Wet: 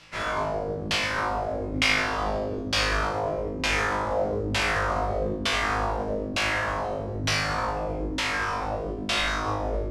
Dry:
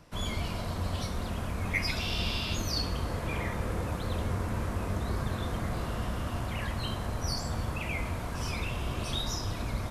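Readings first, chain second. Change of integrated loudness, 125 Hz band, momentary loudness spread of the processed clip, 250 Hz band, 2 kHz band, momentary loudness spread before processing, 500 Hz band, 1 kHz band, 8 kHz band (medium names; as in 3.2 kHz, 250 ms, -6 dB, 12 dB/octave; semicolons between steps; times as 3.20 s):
+7.0 dB, -1.5 dB, 6 LU, +3.5 dB, +11.5 dB, 4 LU, +11.0 dB, +11.0 dB, +5.0 dB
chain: formants flattened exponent 0.3; high-order bell 7.5 kHz +10 dB; on a send: flutter echo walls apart 3.3 m, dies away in 1 s; on the sum: LFO low-pass saw down 1.1 Hz 270–3100 Hz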